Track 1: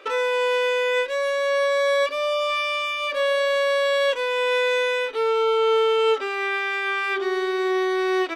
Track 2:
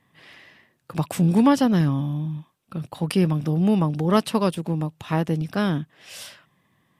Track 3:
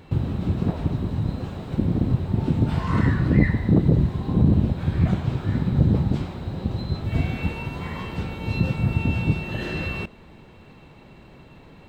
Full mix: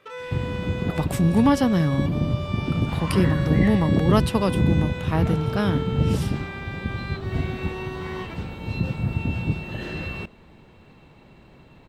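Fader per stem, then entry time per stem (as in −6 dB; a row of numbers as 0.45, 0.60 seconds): −12.5, −1.0, −3.0 decibels; 0.00, 0.00, 0.20 seconds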